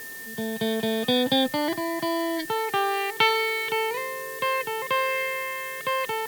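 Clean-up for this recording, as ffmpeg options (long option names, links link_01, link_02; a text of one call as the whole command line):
ffmpeg -i in.wav -af "bandreject=frequency=1800:width=30,afftdn=noise_reduction=30:noise_floor=-37" out.wav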